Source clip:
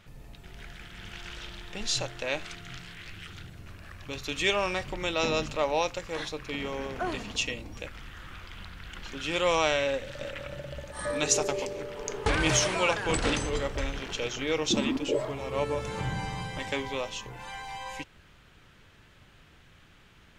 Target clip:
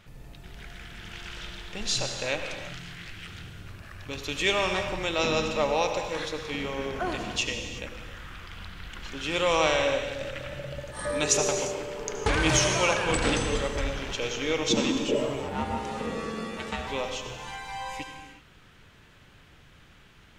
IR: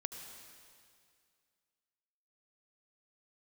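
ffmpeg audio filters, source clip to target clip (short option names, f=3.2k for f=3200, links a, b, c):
-filter_complex "[0:a]asplit=3[a][b][c];[a]afade=t=out:st=15.41:d=0.02[d];[b]aeval=exprs='val(0)*sin(2*PI*350*n/s)':c=same,afade=t=in:st=15.41:d=0.02,afade=t=out:st=16.86:d=0.02[e];[c]afade=t=in:st=16.86:d=0.02[f];[d][e][f]amix=inputs=3:normalize=0[g];[1:a]atrim=start_sample=2205,afade=t=out:st=0.43:d=0.01,atrim=end_sample=19404[h];[g][h]afir=irnorm=-1:irlink=0,volume=3.5dB"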